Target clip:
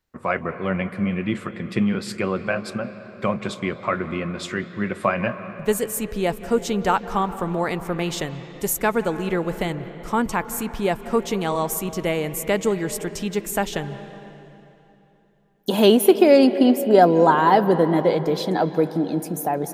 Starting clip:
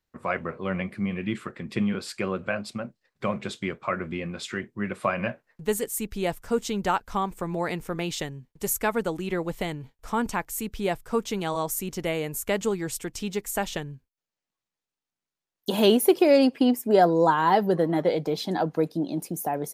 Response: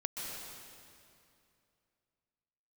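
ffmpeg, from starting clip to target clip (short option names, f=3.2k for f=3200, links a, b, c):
-filter_complex "[0:a]asplit=2[a][b];[1:a]atrim=start_sample=2205,asetrate=34839,aresample=44100,lowpass=3k[c];[b][c]afir=irnorm=-1:irlink=0,volume=-12dB[d];[a][d]amix=inputs=2:normalize=0,volume=3dB"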